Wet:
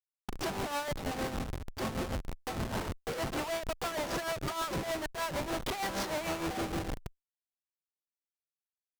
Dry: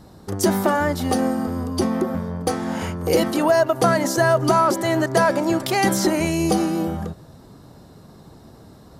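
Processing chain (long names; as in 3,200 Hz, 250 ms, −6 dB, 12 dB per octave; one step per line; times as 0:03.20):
three-way crossover with the lows and the highs turned down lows −19 dB, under 580 Hz, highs −23 dB, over 6,000 Hz
comparator with hysteresis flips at −30 dBFS
harmonic generator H 5 −13 dB, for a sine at −20 dBFS
amplitude tremolo 6.5 Hz, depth 60%
level −7.5 dB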